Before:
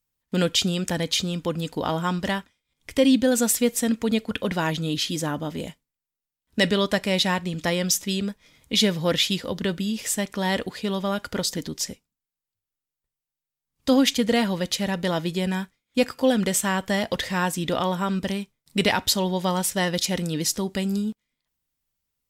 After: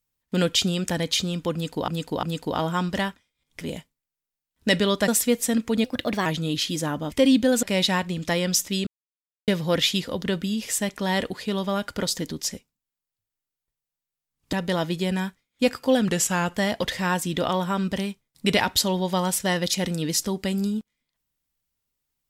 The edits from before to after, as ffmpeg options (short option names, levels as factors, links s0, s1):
-filter_complex "[0:a]asplit=14[s0][s1][s2][s3][s4][s5][s6][s7][s8][s9][s10][s11][s12][s13];[s0]atrim=end=1.882[s14];[s1]atrim=start=1.528:end=1.882[s15];[s2]atrim=start=1.528:end=2.912[s16];[s3]atrim=start=5.518:end=6.992[s17];[s4]atrim=start=3.418:end=4.184[s18];[s5]atrim=start=4.18:end=4.66,asetpts=PTS-STARTPTS,asetrate=50715,aresample=44100[s19];[s6]atrim=start=4.656:end=5.522[s20];[s7]atrim=start=2.908:end=3.422[s21];[s8]atrim=start=6.988:end=8.23,asetpts=PTS-STARTPTS,afade=t=out:st=1.238:d=0.004:c=hsin[s22];[s9]atrim=start=8.23:end=8.84,asetpts=PTS-STARTPTS,volume=0[s23];[s10]atrim=start=8.84:end=13.892,asetpts=PTS-STARTPTS,afade=t=in:d=0.004:c=hsin[s24];[s11]atrim=start=14.878:end=16.434[s25];[s12]atrim=start=16.43:end=16.87,asetpts=PTS-STARTPTS,asetrate=40572,aresample=44100,atrim=end_sample=21091,asetpts=PTS-STARTPTS[s26];[s13]atrim=start=16.866[s27];[s14][s15]acrossfade=d=0.004:c1=hsin:c2=hsin[s28];[s28][s16]acrossfade=d=0.004:c1=hsin:c2=hsin[s29];[s29][s17]acrossfade=d=0.004:c1=hsin:c2=hsin[s30];[s30][s18]acrossfade=d=0.004:c1=hsin:c2=hsin[s31];[s31][s19]acrossfade=d=0.004:c1=hsin:c2=hsin[s32];[s32][s20]acrossfade=d=0.004:c1=hsin:c2=hsin[s33];[s33][s21]acrossfade=d=0.004:c1=hsin:c2=hsin[s34];[s22][s23][s24]concat=n=3:v=0:a=1[s35];[s34][s35]acrossfade=d=0.004:c1=hsin:c2=hsin[s36];[s36][s25]acrossfade=d=0.004:c1=hsin:c2=hsin[s37];[s37][s26]acrossfade=d=0.004:c1=hsin:c2=hsin[s38];[s38][s27]acrossfade=d=0.004:c1=hsin:c2=hsin"